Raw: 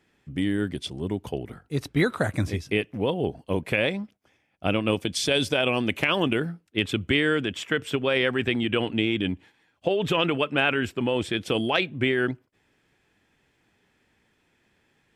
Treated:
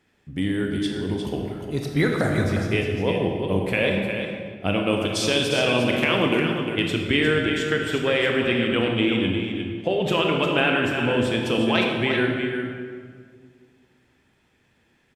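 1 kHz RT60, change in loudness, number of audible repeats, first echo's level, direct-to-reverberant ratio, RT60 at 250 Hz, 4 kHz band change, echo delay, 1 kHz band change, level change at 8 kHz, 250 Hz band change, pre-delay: 1.7 s, +3.0 dB, 1, -7.5 dB, 0.0 dB, 2.5 s, +2.5 dB, 355 ms, +3.0 dB, +2.5 dB, +3.5 dB, 23 ms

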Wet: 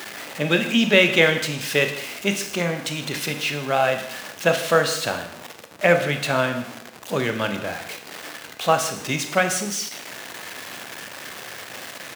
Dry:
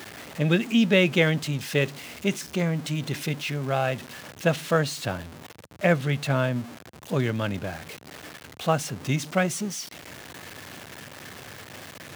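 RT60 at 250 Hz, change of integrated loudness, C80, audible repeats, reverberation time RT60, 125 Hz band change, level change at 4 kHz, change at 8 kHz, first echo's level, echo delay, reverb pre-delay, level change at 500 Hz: 0.70 s, +4.0 dB, 11.0 dB, 1, 0.65 s, -4.0 dB, +7.0 dB, +7.5 dB, -18.0 dB, 153 ms, 21 ms, +5.0 dB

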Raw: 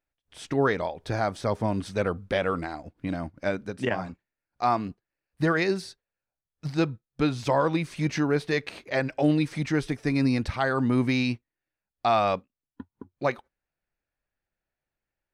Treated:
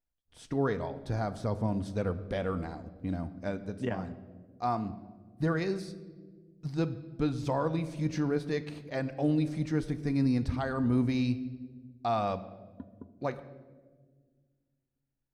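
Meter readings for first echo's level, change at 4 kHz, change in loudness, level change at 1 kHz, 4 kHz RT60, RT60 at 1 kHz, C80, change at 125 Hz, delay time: no echo, -10.0 dB, -5.5 dB, -7.5 dB, 0.90 s, 1.2 s, 15.5 dB, -2.0 dB, no echo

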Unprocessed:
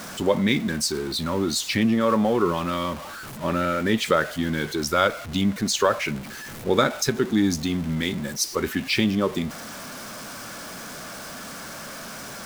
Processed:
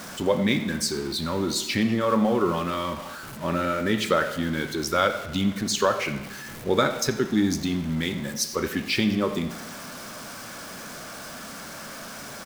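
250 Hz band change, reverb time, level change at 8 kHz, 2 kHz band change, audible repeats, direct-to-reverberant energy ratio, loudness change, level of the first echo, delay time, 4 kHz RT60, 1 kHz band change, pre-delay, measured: -1.5 dB, 1.0 s, -2.0 dB, -1.5 dB, 1, 8.0 dB, -1.5 dB, -17.5 dB, 88 ms, 1.0 s, -1.5 dB, 27 ms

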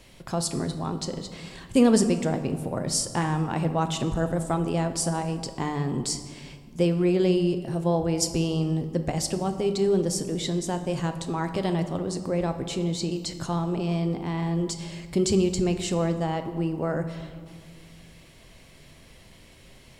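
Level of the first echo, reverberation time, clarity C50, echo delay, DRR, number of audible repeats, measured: no echo, 1.9 s, 10.0 dB, no echo, 7.5 dB, no echo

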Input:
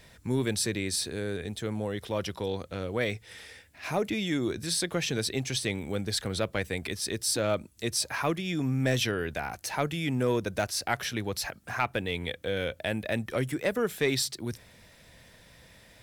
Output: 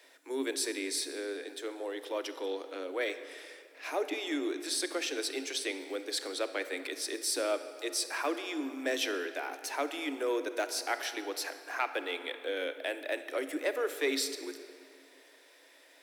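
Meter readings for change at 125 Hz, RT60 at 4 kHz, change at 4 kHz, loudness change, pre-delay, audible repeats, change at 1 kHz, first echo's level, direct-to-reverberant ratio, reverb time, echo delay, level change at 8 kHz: under -40 dB, 1.6 s, -3.5 dB, -4.0 dB, 32 ms, no echo, -3.0 dB, no echo, 10.0 dB, 2.4 s, no echo, -3.5 dB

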